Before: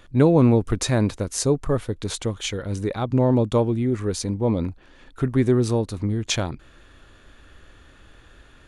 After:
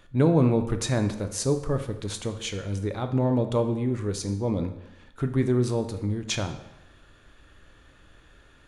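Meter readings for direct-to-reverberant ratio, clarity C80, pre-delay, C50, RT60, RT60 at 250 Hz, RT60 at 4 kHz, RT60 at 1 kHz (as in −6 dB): 7.0 dB, 12.5 dB, 3 ms, 10.5 dB, 0.90 s, 0.90 s, 0.75 s, 0.95 s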